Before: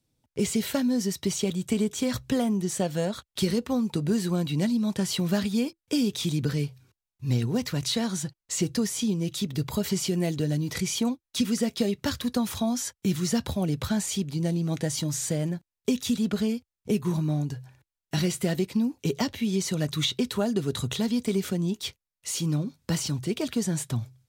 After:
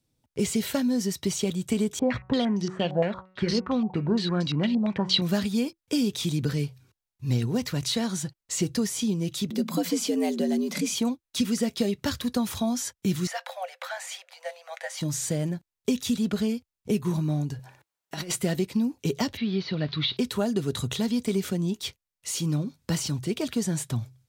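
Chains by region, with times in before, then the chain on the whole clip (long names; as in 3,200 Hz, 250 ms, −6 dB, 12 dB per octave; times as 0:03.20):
0:01.99–0:05.22: hum removal 186.4 Hz, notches 15 + low-pass on a step sequencer 8.7 Hz 740–5,200 Hz
0:09.50–0:10.95: parametric band 88 Hz +13.5 dB 0.52 octaves + frequency shifter +90 Hz
0:13.27–0:15.01: Chebyshev high-pass with heavy ripple 510 Hz, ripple 9 dB + parametric band 1,100 Hz +9 dB 2 octaves
0:17.59–0:18.36: high-pass filter 250 Hz 6 dB per octave + parametric band 830 Hz +6.5 dB 2.1 octaves + compressor whose output falls as the input rises −31 dBFS, ratio −0.5
0:19.37–0:20.17: spike at every zero crossing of −27 dBFS + elliptic low-pass filter 4,400 Hz, stop band 50 dB
whole clip: no processing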